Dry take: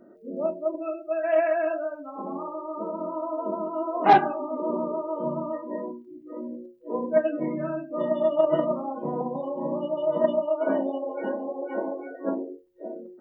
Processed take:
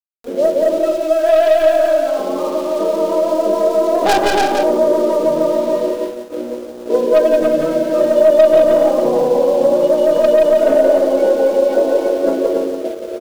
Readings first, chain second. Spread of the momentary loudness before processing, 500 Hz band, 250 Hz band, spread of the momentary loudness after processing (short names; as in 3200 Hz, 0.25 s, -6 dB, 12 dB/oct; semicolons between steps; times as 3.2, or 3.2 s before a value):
14 LU, +15.0 dB, +10.0 dB, 8 LU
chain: tracing distortion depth 0.27 ms; loudspeakers at several distances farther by 59 m -7 dB, 97 m -5 dB; sample leveller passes 3; echo 0.174 s -5.5 dB; in parallel at -0.5 dB: compressor, threshold -15 dBFS, peak gain reduction 9 dB; on the sum: sample gate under -28.5 dBFS; low shelf 130 Hz -9 dB; expander -15 dBFS; graphic EQ 125/250/500/1000/2000 Hz -9/-4/+6/-8/-7 dB; upward compressor, threshold -19 dBFS; gain -2 dB